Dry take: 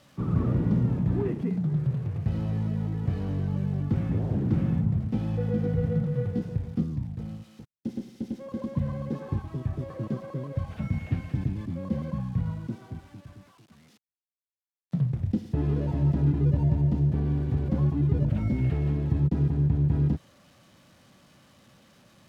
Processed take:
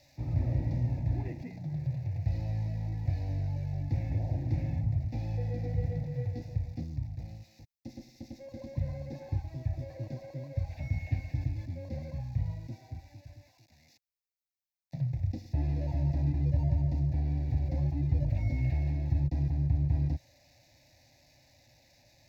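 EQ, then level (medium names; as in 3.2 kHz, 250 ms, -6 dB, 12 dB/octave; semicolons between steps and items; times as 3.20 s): static phaser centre 470 Hz, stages 4; static phaser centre 2.1 kHz, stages 8; +2.5 dB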